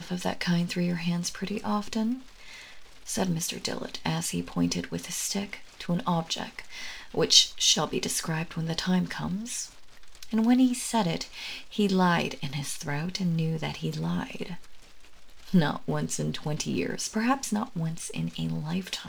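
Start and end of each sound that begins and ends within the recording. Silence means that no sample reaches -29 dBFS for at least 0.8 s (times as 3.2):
3.09–14.54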